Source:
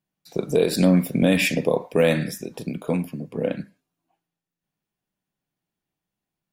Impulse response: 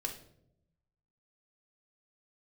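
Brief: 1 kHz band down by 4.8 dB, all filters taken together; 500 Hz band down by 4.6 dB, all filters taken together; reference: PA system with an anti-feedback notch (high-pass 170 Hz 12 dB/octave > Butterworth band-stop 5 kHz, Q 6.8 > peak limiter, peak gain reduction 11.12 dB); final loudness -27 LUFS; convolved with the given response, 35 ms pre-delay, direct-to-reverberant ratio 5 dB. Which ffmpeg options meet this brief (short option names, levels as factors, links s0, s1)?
-filter_complex "[0:a]equalizer=f=500:t=o:g=-4,equalizer=f=1000:t=o:g=-5,asplit=2[s0][s1];[1:a]atrim=start_sample=2205,adelay=35[s2];[s1][s2]afir=irnorm=-1:irlink=0,volume=0.501[s3];[s0][s3]amix=inputs=2:normalize=0,highpass=170,asuperstop=centerf=5000:order=8:qfactor=6.8,volume=1.33,alimiter=limit=0.158:level=0:latency=1"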